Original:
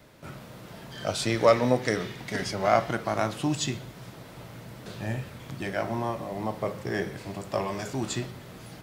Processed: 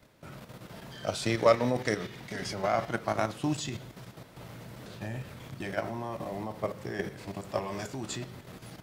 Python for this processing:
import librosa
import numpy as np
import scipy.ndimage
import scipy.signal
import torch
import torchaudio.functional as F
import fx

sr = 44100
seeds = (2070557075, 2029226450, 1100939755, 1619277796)

y = fx.level_steps(x, sr, step_db=9)